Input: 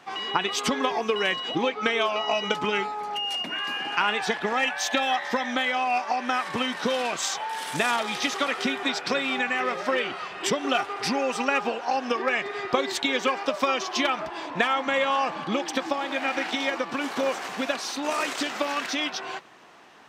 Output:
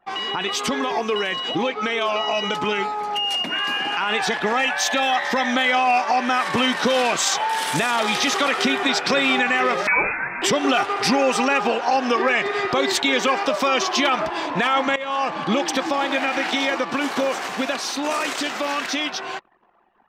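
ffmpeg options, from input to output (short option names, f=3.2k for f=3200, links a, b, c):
-filter_complex "[0:a]asettb=1/sr,asplit=3[a][b][c];[a]atrim=end=9.874[d];[b]atrim=start=9.87:end=10.42,asetpts=PTS-STARTPTS,afade=t=in:d=0.004:c=qsin,afade=t=out:st=0.546:d=0.004:c=qsin,lowpass=f=2.4k:t=q:w=0.5098,lowpass=f=2.4k:t=q:w=0.6013,lowpass=f=2.4k:t=q:w=0.9,lowpass=f=2.4k:t=q:w=2.563,afreqshift=-2800[e];[c]atrim=start=10.416[f];[d][e]acrossfade=d=0.004:c1=hsin:c2=qsin[g];[g][f]acrossfade=d=0.004:c1=qsin:c2=hsin,asplit=2[h][i];[h]atrim=end=14.96,asetpts=PTS-STARTPTS,afade=t=out:st=14.956:d=0.004:c=hsin:silence=0.105925[j];[i]atrim=start=14.96,asetpts=PTS-STARTPTS,afade=t=in:d=0.57:silence=0.105925[k];[j][k]concat=n=2:v=0:a=1,anlmdn=0.0398,alimiter=limit=-19dB:level=0:latency=1:release=21,dynaudnorm=f=810:g=11:m=4dB,volume=5dB"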